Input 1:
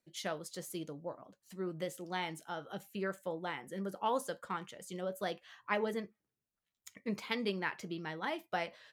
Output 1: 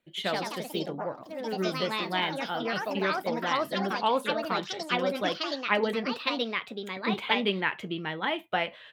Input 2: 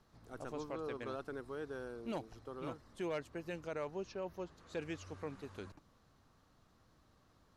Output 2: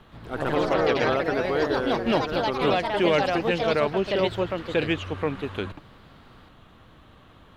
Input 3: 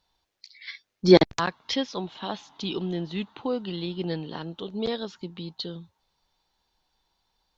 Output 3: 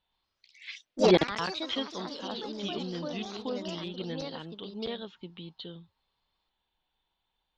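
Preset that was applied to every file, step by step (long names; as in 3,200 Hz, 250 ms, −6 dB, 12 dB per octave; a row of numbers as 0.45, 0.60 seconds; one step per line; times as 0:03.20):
high shelf with overshoot 4,100 Hz −8 dB, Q 3
delay with pitch and tempo change per echo 120 ms, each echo +3 semitones, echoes 3
normalise the peak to −9 dBFS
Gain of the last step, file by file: +7.0, +17.0, −7.5 decibels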